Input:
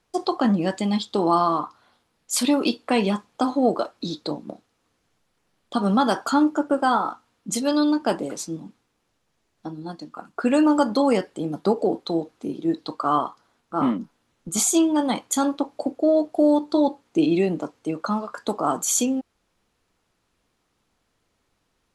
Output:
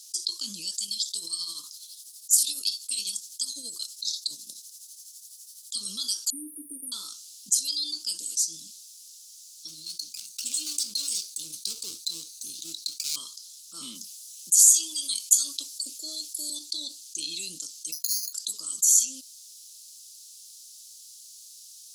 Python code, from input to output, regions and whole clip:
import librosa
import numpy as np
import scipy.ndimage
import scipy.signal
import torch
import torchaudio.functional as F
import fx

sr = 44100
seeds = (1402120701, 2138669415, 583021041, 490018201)

y = fx.chain(x, sr, fx.high_shelf(hz=6500.0, db=9.5),
    fx.tremolo_shape(shape='triangle', hz=12.0, depth_pct=80), at=(0.73, 5.76))
y = fx.chain(y, sr, fx.brickwall_bandstop(low_hz=520.0, high_hz=8800.0),
    fx.comb(ms=7.3, depth=0.77), at=(6.3, 6.92))
y = fx.chain(y, sr, fx.lower_of_two(delay_ms=0.47),
    fx.highpass(hz=110.0, slope=6), at=(9.68, 13.16))
y = fx.chain(y, sr, fx.steep_highpass(hz=160.0, slope=72),
    fx.high_shelf(hz=5200.0, db=8.5),
    fx.bell_lfo(hz=3.3, low_hz=920.0, high_hz=2800.0, db=10), at=(13.95, 16.5))
y = fx.chain(y, sr, fx.resample_bad(factor=8, down='filtered', up='hold'),
    fx.upward_expand(threshold_db=-43.0, expansion=1.5), at=(17.92, 18.33))
y = scipy.signal.sosfilt(scipy.signal.cheby2(4, 50, 2000.0, 'highpass', fs=sr, output='sos'), y)
y = fx.env_flatten(y, sr, amount_pct=50)